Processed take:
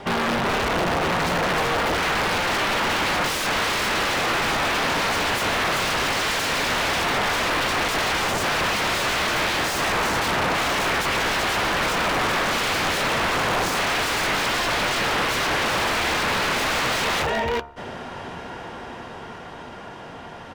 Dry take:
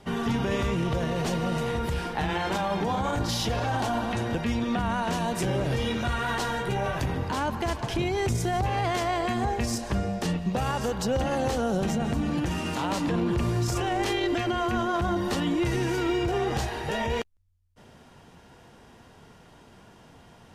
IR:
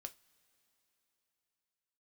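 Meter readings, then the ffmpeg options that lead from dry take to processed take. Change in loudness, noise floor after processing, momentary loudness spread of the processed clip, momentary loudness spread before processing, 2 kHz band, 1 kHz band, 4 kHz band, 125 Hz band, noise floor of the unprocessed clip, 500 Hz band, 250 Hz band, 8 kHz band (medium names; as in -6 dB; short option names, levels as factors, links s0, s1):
+6.0 dB, -38 dBFS, 14 LU, 3 LU, +13.0 dB, +7.0 dB, +12.0 dB, -4.5 dB, -53 dBFS, +3.0 dB, -2.5 dB, +9.5 dB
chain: -filter_complex "[0:a]highshelf=f=4100:g=-4.5,alimiter=level_in=1.26:limit=0.0631:level=0:latency=1:release=13,volume=0.794,dynaudnorm=f=160:g=31:m=2.11,bandreject=f=70.6:t=h:w=4,bandreject=f=141.2:t=h:w=4,bandreject=f=211.8:t=h:w=4,bandreject=f=282.4:t=h:w=4,bandreject=f=353:t=h:w=4,bandreject=f=423.6:t=h:w=4,bandreject=f=494.2:t=h:w=4,bandreject=f=564.8:t=h:w=4,bandreject=f=635.4:t=h:w=4,bandreject=f=706:t=h:w=4,bandreject=f=776.6:t=h:w=4,bandreject=f=847.2:t=h:w=4,bandreject=f=917.8:t=h:w=4,bandreject=f=988.4:t=h:w=4,bandreject=f=1059:t=h:w=4,bandreject=f=1129.6:t=h:w=4,bandreject=f=1200.2:t=h:w=4,bandreject=f=1270.8:t=h:w=4,bandreject=f=1341.4:t=h:w=4,bandreject=f=1412:t=h:w=4,bandreject=f=1482.6:t=h:w=4,asplit=2[s0][s1];[1:a]atrim=start_sample=2205[s2];[s1][s2]afir=irnorm=-1:irlink=0,volume=0.562[s3];[s0][s3]amix=inputs=2:normalize=0,acontrast=53,aecho=1:1:379:0.398,aeval=exprs='(mod(9.44*val(0)+1,2)-1)/9.44':c=same,asplit=2[s4][s5];[s5]highpass=f=720:p=1,volume=3.98,asoftclip=type=tanh:threshold=0.112[s6];[s4][s6]amix=inputs=2:normalize=0,lowpass=f=2100:p=1,volume=0.501,volume=13.3,asoftclip=hard,volume=0.075,volume=1.58"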